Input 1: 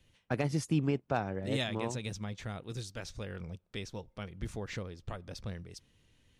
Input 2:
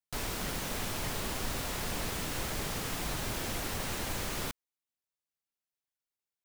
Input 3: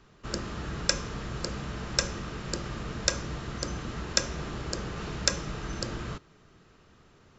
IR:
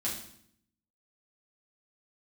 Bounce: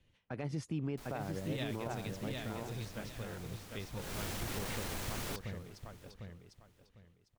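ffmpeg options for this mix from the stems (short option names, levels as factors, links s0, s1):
-filter_complex "[0:a]lowpass=f=3300:p=1,volume=0.668,asplit=2[s0][s1];[s1]volume=0.562[s2];[1:a]asoftclip=type=tanh:threshold=0.0282,adelay=850,volume=0.708,afade=t=in:st=3.95:d=0.22:silence=0.251189,asplit=2[s3][s4];[s4]volume=0.0891[s5];[s2][s5]amix=inputs=2:normalize=0,aecho=0:1:751|1502|2253|3004:1|0.24|0.0576|0.0138[s6];[s0][s3][s6]amix=inputs=3:normalize=0,alimiter=level_in=1.68:limit=0.0631:level=0:latency=1:release=46,volume=0.596"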